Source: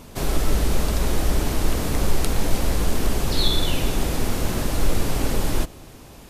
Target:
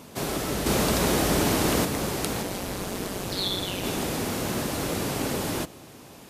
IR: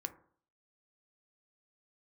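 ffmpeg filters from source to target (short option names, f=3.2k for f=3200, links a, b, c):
-filter_complex "[0:a]highpass=130,asettb=1/sr,asplit=3[a][b][c];[a]atrim=end=0.664[d];[b]atrim=start=0.66:end=1.85,asetpts=PTS-STARTPTS,afade=t=in:d=0.004:c=qsin,afade=t=out:st=1.186:d=0.004:c=qsin,acontrast=42[e];[c]atrim=start=1.846[f];[d][e]acrossfade=d=0.004:c1=hsin:c2=qsin[g];[g][f]acrossfade=d=0.004:c1=qsin:c2=hsin,asplit=3[h][i][j];[h]afade=t=out:st=2.41:d=0.02[k];[i]tremolo=f=190:d=0.75,afade=t=in:st=2.41:d=0.02,afade=t=out:st=3.83:d=0.02[l];[j]afade=t=in:st=3.83:d=0.02[m];[k][l][m]amix=inputs=3:normalize=0,volume=-1dB"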